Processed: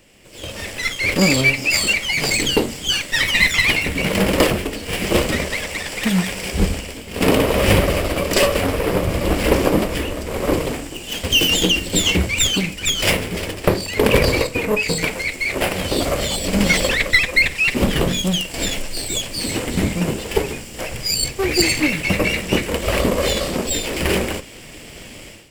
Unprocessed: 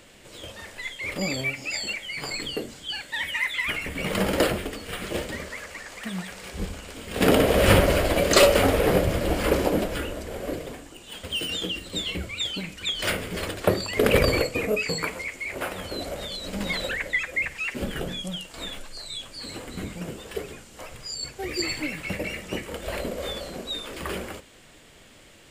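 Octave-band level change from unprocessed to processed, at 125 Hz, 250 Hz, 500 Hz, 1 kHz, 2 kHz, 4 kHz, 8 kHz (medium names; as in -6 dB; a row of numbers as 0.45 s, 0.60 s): +8.0 dB, +8.5 dB, +5.0 dB, +5.0 dB, +9.5 dB, +9.5 dB, +11.5 dB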